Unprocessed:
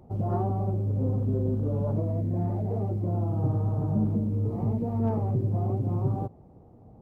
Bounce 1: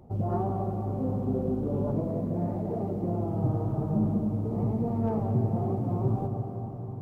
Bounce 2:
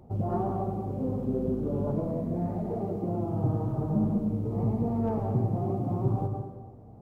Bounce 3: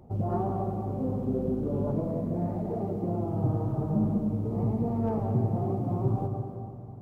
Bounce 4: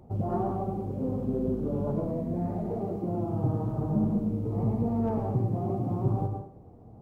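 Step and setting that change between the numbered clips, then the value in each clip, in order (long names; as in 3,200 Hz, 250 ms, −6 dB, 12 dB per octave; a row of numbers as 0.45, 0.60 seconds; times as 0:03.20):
dense smooth reverb, RT60: 5.3, 1.2, 2.5, 0.51 seconds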